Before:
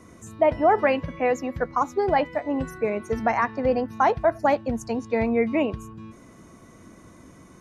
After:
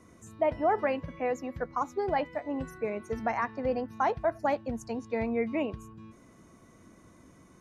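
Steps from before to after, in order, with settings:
0:00.84–0:01.72: dynamic equaliser 3,100 Hz, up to −3 dB, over −36 dBFS, Q 0.7
level −7.5 dB

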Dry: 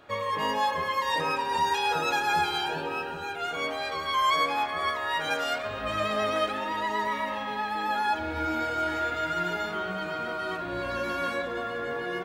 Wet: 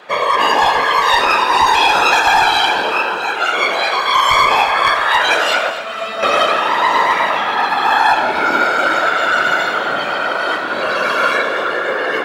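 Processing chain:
hum removal 352.1 Hz, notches 29
random phases in short frames
meter weighting curve A
asymmetric clip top −21 dBFS
0:05.70–0:06.23: tuned comb filter 220 Hz, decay 0.19 s, harmonics all, mix 90%
delay that swaps between a low-pass and a high-pass 123 ms, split 1,700 Hz, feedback 63%, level −9.5 dB
on a send at −7.5 dB: convolution reverb, pre-delay 15 ms
on the sum: boost into a limiter +15.5 dB
level −1 dB

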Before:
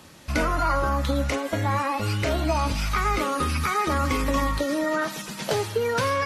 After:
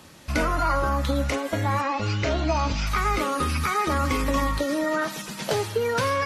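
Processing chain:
0:01.81–0:02.87: Butterworth low-pass 7,200 Hz 72 dB per octave

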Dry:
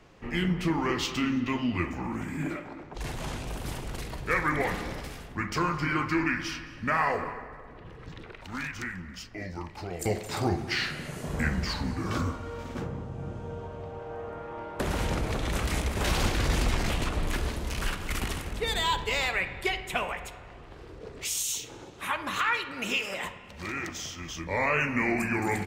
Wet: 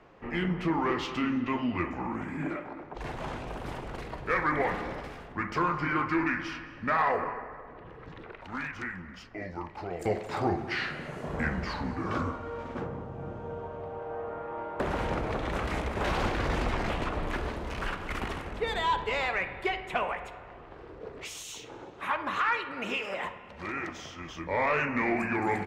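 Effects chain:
high-shelf EQ 2,100 Hz −9 dB
mid-hump overdrive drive 11 dB, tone 1,800 Hz, clips at −13.5 dBFS

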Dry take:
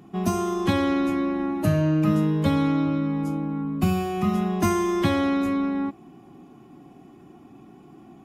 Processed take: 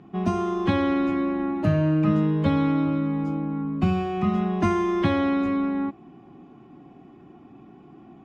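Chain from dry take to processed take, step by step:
low-pass filter 3,300 Hz 12 dB per octave

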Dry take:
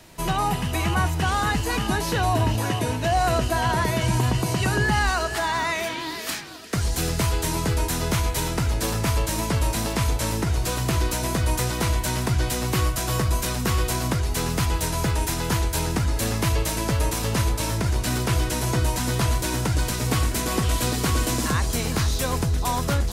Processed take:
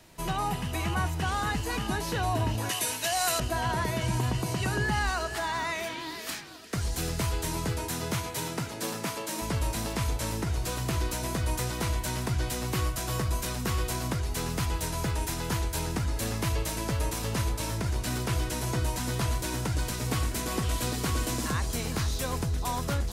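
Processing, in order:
0:02.69–0:03.40: spectral tilt +4.5 dB per octave
0:07.72–0:09.41: high-pass filter 72 Hz → 200 Hz 24 dB per octave
level −6.5 dB

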